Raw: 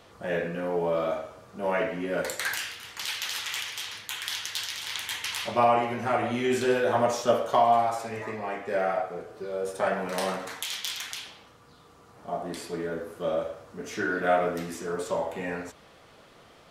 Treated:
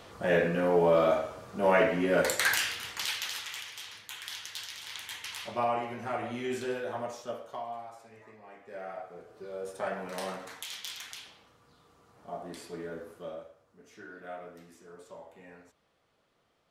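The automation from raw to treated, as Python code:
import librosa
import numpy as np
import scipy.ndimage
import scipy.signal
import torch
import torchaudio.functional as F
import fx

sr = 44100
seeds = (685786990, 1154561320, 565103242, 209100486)

y = fx.gain(x, sr, db=fx.line((2.82, 3.5), (3.56, -8.0), (6.5, -8.0), (7.77, -19.0), (8.43, -19.0), (9.46, -7.5), (13.11, -7.5), (13.54, -19.0)))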